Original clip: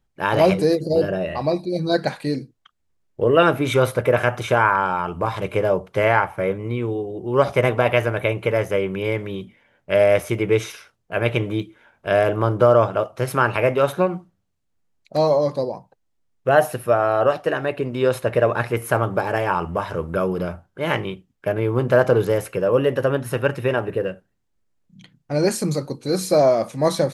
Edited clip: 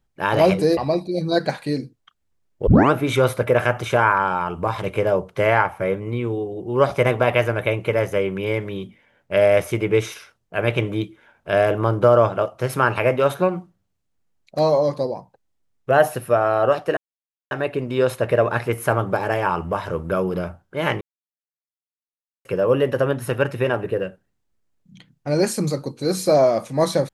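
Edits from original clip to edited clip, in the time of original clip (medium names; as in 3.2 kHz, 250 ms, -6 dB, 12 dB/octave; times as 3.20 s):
0.77–1.35 s: delete
3.25 s: tape start 0.25 s
17.55 s: insert silence 0.54 s
21.05–22.49 s: mute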